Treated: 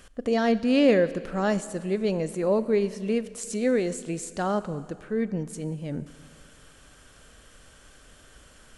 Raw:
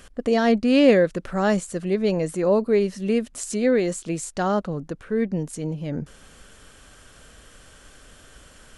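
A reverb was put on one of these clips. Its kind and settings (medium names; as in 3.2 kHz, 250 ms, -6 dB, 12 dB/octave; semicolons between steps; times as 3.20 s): Schroeder reverb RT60 2.1 s, combs from 28 ms, DRR 14.5 dB; trim -4 dB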